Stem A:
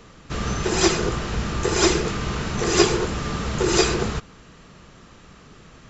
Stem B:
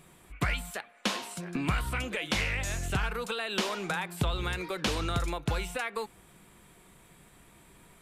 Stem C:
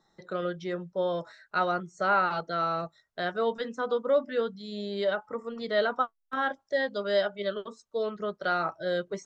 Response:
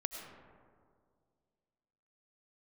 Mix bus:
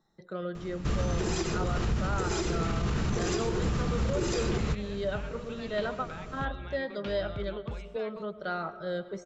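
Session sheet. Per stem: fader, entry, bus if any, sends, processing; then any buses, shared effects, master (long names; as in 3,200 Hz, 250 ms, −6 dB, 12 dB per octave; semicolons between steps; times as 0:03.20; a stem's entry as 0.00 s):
−3.0 dB, 0.55 s, no send, downward compressor, threshold −24 dBFS, peak gain reduction 13 dB
−10.0 dB, 2.20 s, no send, transistor ladder low-pass 4,600 Hz, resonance 20%
−10.0 dB, 0.00 s, send −6.5 dB, no processing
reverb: on, RT60 2.1 s, pre-delay 60 ms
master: low-shelf EQ 310 Hz +9 dB; brickwall limiter −20.5 dBFS, peak gain reduction 8.5 dB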